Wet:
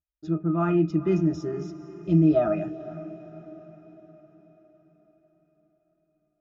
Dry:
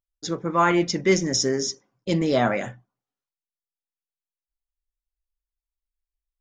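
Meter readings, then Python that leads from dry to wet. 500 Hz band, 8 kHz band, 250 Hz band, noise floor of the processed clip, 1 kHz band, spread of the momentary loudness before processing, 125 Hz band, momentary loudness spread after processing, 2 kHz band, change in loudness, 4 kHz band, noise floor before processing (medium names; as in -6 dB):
-2.5 dB, under -25 dB, +2.0 dB, -76 dBFS, -9.5 dB, 10 LU, +4.0 dB, 20 LU, -15.5 dB, -1.5 dB, under -20 dB, under -85 dBFS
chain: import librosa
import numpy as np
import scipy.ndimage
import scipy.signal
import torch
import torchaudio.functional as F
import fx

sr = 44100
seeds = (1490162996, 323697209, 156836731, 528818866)

y = fx.high_shelf(x, sr, hz=7900.0, db=-3.0)
y = fx.octave_resonator(y, sr, note='D#', decay_s=0.12)
y = fx.echo_diffused(y, sr, ms=470, feedback_pct=53, wet_db=-15.5)
y = y * 10.0 ** (8.0 / 20.0)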